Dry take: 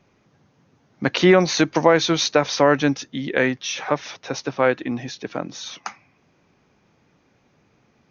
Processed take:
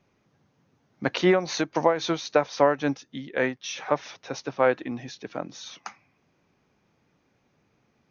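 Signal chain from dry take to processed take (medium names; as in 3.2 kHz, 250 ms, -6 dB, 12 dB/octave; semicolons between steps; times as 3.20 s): dynamic bell 750 Hz, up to +6 dB, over -28 dBFS, Q 0.71; 1.21–3.64 s: tremolo triangle 3.7 Hz, depth 70%; trim -7 dB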